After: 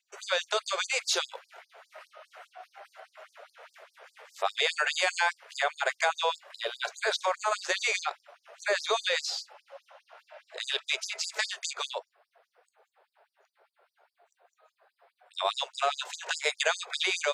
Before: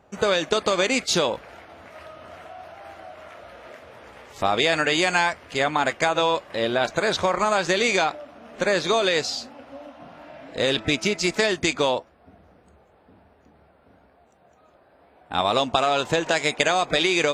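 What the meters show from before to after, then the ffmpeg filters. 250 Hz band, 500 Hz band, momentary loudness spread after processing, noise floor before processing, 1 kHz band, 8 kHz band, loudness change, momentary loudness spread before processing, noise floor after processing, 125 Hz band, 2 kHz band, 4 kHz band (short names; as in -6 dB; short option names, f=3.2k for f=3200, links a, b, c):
under -25 dB, -11.5 dB, 10 LU, -58 dBFS, -8.5 dB, -4.5 dB, -7.5 dB, 21 LU, -83 dBFS, under -40 dB, -6.0 dB, -5.5 dB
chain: -af "equalizer=f=1.5k:t=o:w=0.26:g=2.5,afftfilt=real='re*gte(b*sr/1024,360*pow(4600/360,0.5+0.5*sin(2*PI*4.9*pts/sr)))':imag='im*gte(b*sr/1024,360*pow(4600/360,0.5+0.5*sin(2*PI*4.9*pts/sr)))':win_size=1024:overlap=0.75,volume=-4.5dB"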